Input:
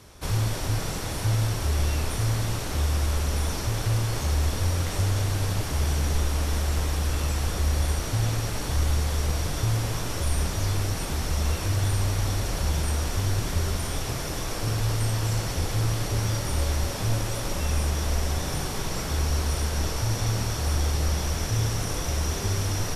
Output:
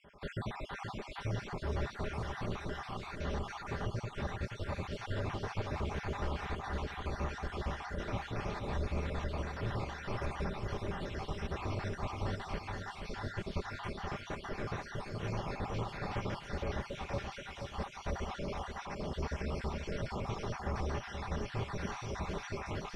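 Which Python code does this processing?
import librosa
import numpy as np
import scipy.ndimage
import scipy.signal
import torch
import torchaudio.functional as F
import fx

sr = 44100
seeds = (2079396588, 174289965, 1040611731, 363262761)

y = fx.spec_dropout(x, sr, seeds[0], share_pct=61)
y = scipy.signal.sosfilt(scipy.signal.butter(2, 2400.0, 'lowpass', fs=sr, output='sos'), y)
y = fx.low_shelf(y, sr, hz=110.0, db=-10.5)
y = y + 0.44 * np.pad(y, (int(5.0 * sr / 1000.0), 0))[:len(y)]
y = fx.echo_feedback(y, sr, ms=478, feedback_pct=45, wet_db=-6.0)
y = y * 10.0 ** (-3.5 / 20.0)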